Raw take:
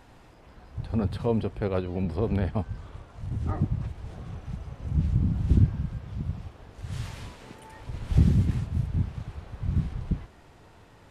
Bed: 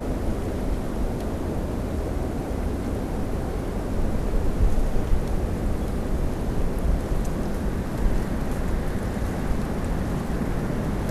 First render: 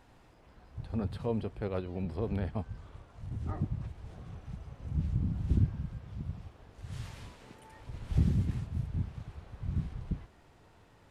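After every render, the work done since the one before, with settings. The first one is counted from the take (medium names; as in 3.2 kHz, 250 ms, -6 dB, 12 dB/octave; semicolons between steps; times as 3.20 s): trim -7 dB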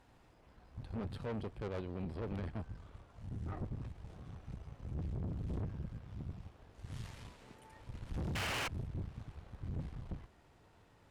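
8.35–8.68 s: painted sound noise 260–3200 Hz -26 dBFS; valve stage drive 36 dB, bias 0.75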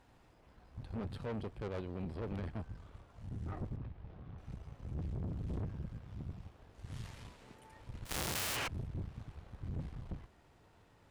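3.76–4.38 s: distance through air 270 m; 8.05–8.55 s: formants flattened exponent 0.3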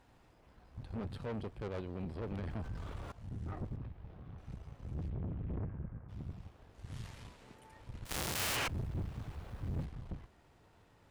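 2.47–3.12 s: level flattener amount 70%; 5.08–6.08 s: low-pass 3.6 kHz -> 1.6 kHz 24 dB/octave; 8.39–9.85 s: companding laws mixed up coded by mu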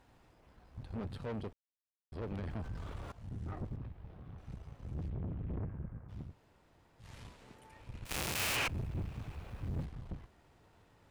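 1.53–2.12 s: mute; 6.29–7.06 s: room tone, crossfade 0.16 s; 7.70–9.66 s: peaking EQ 2.5 kHz +6 dB 0.31 oct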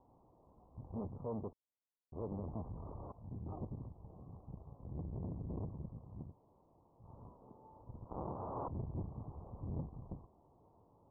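steep low-pass 1.1 kHz 72 dB/octave; bass shelf 79 Hz -9.5 dB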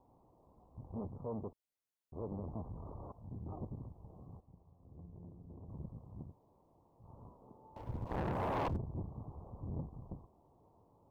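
4.40–5.69 s: feedback comb 87 Hz, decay 0.97 s, mix 80%; 7.76–8.77 s: waveshaping leveller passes 3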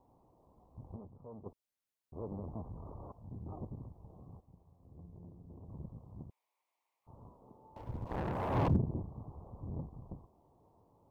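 0.96–1.46 s: gain -9 dB; 6.30–7.07 s: resonant high-pass 2.2 kHz, resonance Q 5; 8.50–8.96 s: peaking EQ 85 Hz -> 330 Hz +12 dB 2.6 oct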